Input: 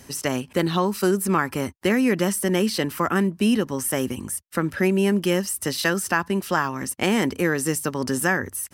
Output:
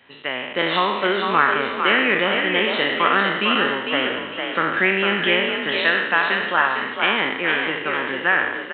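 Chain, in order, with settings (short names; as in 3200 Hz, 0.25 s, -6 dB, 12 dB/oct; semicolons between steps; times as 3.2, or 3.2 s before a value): spectral trails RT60 0.99 s; HPF 1400 Hz 6 dB/oct; AGC gain up to 8.5 dB; frequency-shifting echo 0.453 s, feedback 37%, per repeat +42 Hz, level -5 dB; downsampling 8000 Hz; gain +1 dB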